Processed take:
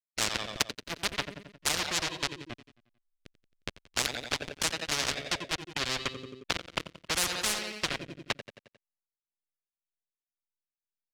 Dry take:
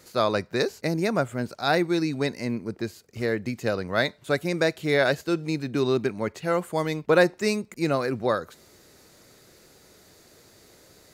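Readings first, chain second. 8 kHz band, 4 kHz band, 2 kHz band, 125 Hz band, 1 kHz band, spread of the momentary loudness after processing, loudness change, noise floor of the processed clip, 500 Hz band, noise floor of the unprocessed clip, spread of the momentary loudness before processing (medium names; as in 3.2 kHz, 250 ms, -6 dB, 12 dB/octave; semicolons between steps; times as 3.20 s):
+9.5 dB, +3.5 dB, -5.5 dB, -13.5 dB, -8.0 dB, 13 LU, -6.0 dB, under -85 dBFS, -17.5 dB, -55 dBFS, 8 LU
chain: expander on every frequency bin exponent 2; treble shelf 11 kHz +5 dB; touch-sensitive flanger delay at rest 8.1 ms, full sweep at -23.5 dBFS; doubling 47 ms -13 dB; hysteresis with a dead band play -20.5 dBFS; rotary cabinet horn 7.5 Hz, later 1.1 Hz, at 3.20 s; frequency weighting D; feedback delay 89 ms, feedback 56%, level -18.5 dB; spectrum-flattening compressor 10:1; trim +7.5 dB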